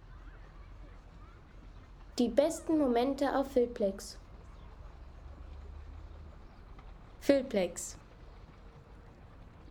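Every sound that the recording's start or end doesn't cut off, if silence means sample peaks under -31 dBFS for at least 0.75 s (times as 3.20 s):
2.18–3.91 s
7.29–7.83 s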